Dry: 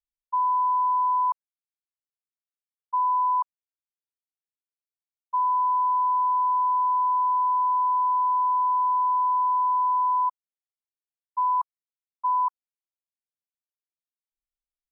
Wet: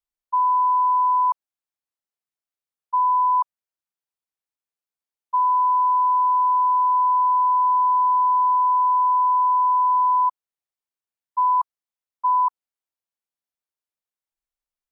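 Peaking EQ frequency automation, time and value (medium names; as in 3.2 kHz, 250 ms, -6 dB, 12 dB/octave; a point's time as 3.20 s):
peaking EQ +4.5 dB 1.8 oct
820 Hz
from 3.33 s 920 Hz
from 5.36 s 840 Hz
from 6.94 s 900 Hz
from 7.64 s 990 Hz
from 8.55 s 890 Hz
from 9.91 s 1 kHz
from 11.53 s 930 Hz
from 12.41 s 870 Hz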